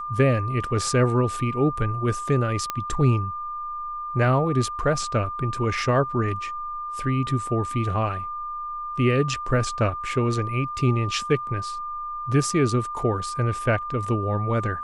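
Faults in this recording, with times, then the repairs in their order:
whistle 1,200 Hz −29 dBFS
0:02.70: click −11 dBFS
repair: click removal
notch filter 1,200 Hz, Q 30

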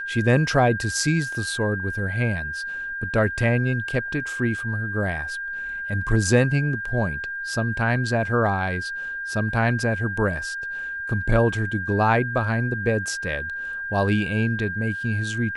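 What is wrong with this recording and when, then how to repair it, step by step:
whistle 1,600 Hz −28 dBFS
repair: notch filter 1,600 Hz, Q 30

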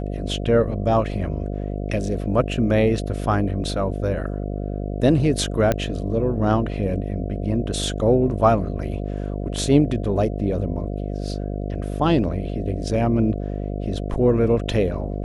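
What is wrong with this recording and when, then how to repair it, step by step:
mains buzz 50 Hz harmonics 14 −27 dBFS
0:05.72: click −7 dBFS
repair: click removal
hum removal 50 Hz, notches 14

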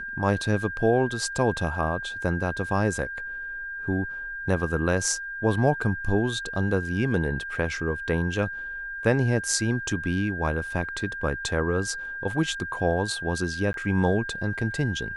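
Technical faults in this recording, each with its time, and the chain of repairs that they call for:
whistle 1,600 Hz −32 dBFS
0:13.73–0:13.74: drop-out 12 ms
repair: notch filter 1,600 Hz, Q 30
repair the gap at 0:13.73, 12 ms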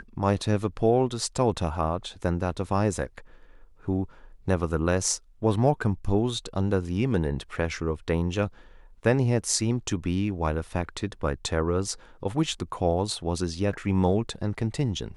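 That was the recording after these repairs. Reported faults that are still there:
none of them is left

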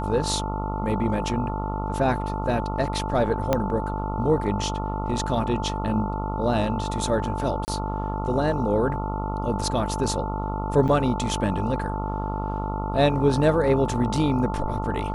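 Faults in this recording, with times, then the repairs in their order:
mains buzz 50 Hz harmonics 28 −29 dBFS
whistle 880 Hz −31 dBFS
0:03.53: click −8 dBFS
0:07.65–0:07.68: drop-out 29 ms
0:10.88–0:10.89: drop-out 5.8 ms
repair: click removal
notch filter 880 Hz, Q 30
hum removal 50 Hz, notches 28
repair the gap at 0:07.65, 29 ms
repair the gap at 0:10.88, 5.8 ms

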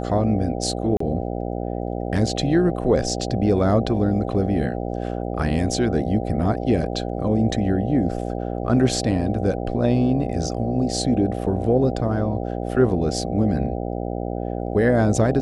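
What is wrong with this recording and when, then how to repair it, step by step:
mains buzz 60 Hz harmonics 13 −27 dBFS
0:00.97–0:01.00: drop-out 34 ms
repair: hum removal 60 Hz, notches 13
repair the gap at 0:00.97, 34 ms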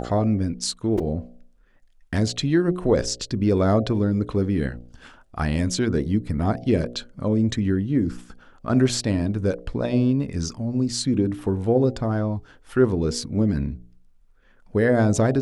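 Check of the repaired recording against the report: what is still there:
none of them is left

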